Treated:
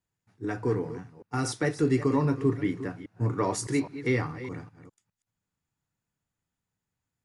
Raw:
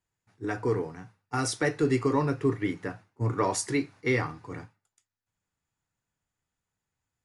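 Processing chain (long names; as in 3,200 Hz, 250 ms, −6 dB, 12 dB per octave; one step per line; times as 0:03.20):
delay that plays each chunk backwards 204 ms, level −12.5 dB
parametric band 180 Hz +6 dB 2 octaves
level −3 dB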